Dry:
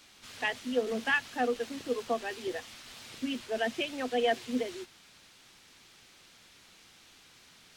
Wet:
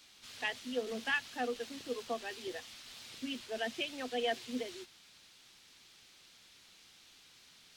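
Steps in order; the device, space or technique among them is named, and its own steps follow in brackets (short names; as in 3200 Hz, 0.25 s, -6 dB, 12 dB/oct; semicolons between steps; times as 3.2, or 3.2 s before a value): presence and air boost (bell 4000 Hz +5.5 dB 1.5 oct; high shelf 9000 Hz +5 dB); gain -7 dB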